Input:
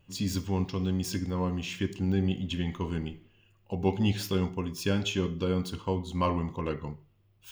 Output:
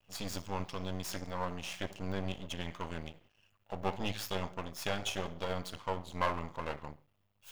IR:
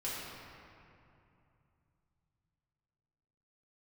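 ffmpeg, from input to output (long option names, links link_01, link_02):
-af "aeval=exprs='max(val(0),0)':channel_layout=same,lowshelf=frequency=480:width_type=q:width=1.5:gain=-7"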